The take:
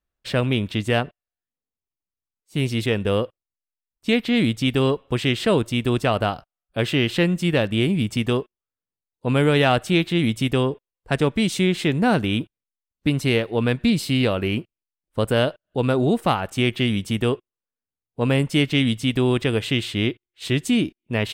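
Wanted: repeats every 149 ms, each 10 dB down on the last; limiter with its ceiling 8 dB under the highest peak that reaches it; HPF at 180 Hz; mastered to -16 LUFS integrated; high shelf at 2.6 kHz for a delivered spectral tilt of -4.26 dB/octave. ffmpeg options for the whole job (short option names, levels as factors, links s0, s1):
-af "highpass=180,highshelf=f=2600:g=6.5,alimiter=limit=0.299:level=0:latency=1,aecho=1:1:149|298|447|596:0.316|0.101|0.0324|0.0104,volume=2.24"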